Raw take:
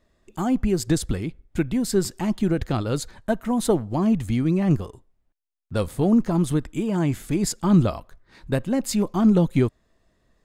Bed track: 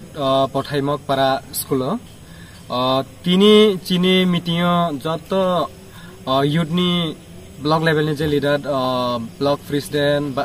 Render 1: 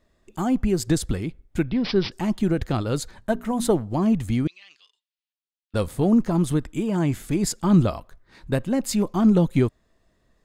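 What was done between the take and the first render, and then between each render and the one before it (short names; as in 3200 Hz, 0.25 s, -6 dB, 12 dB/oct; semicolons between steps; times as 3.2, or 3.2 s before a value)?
1.66–2.12 careless resampling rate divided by 4×, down none, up filtered; 3.16–3.69 notches 60/120/180/240/300/360/420 Hz; 4.47–5.74 Butterworth band-pass 3600 Hz, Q 1.5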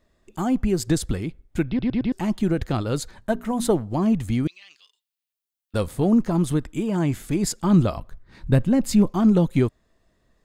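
1.68 stutter in place 0.11 s, 4 plays; 4.43–5.77 high shelf 8400 Hz +10.5 dB; 7.97–9.1 tone controls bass +9 dB, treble -2 dB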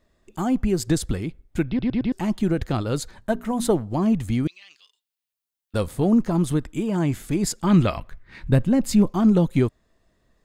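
7.67–8.5 bell 2200 Hz +11 dB 1.2 oct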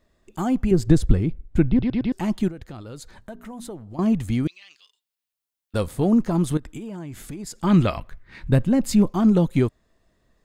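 0.71–1.83 tilt -2.5 dB/oct; 2.48–3.99 compressor 2.5:1, threshold -40 dBFS; 6.57–7.61 compressor 12:1, threshold -30 dBFS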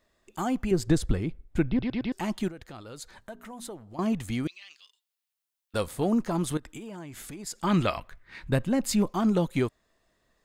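low shelf 380 Hz -10 dB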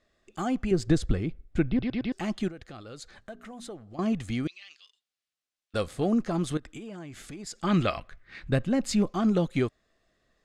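LPF 7000 Hz 12 dB/oct; notch 940 Hz, Q 5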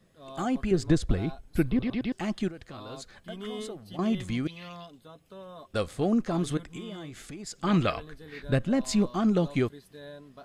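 add bed track -27.5 dB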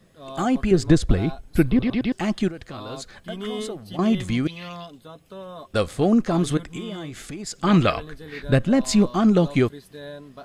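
gain +7 dB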